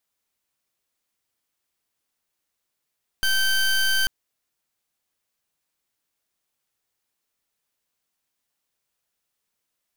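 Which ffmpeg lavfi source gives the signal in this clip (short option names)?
-f lavfi -i "aevalsrc='0.0944*(2*lt(mod(1550*t,1),0.2)-1)':d=0.84:s=44100"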